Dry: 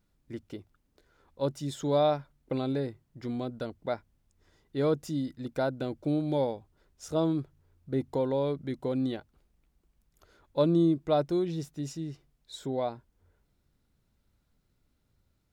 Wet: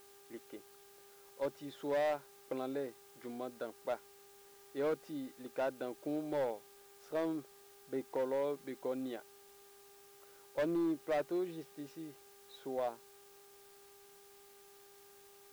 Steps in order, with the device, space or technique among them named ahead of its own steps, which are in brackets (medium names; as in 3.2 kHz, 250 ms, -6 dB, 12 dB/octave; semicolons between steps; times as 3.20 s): aircraft radio (band-pass 380–2500 Hz; hard clipper -25.5 dBFS, distortion -12 dB; mains buzz 400 Hz, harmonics 4, -59 dBFS -8 dB/octave; white noise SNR 22 dB); trim -4 dB